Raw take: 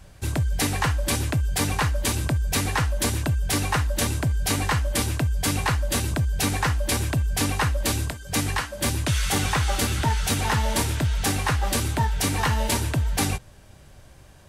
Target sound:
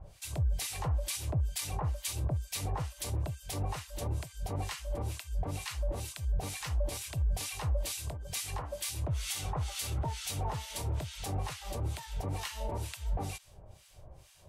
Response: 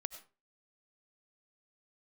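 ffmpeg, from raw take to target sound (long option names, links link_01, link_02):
-filter_complex "[0:a]equalizer=frequency=250:width_type=o:width=0.67:gain=-11,equalizer=frequency=630:width_type=o:width=0.67:gain=3,equalizer=frequency=1600:width_type=o:width=0.67:gain=-10,alimiter=limit=-23dB:level=0:latency=1:release=80,acrossover=split=1300[link_01][link_02];[link_01]aeval=exprs='val(0)*(1-1/2+1/2*cos(2*PI*2.2*n/s))':channel_layout=same[link_03];[link_02]aeval=exprs='val(0)*(1-1/2-1/2*cos(2*PI*2.2*n/s))':channel_layout=same[link_04];[link_03][link_04]amix=inputs=2:normalize=0"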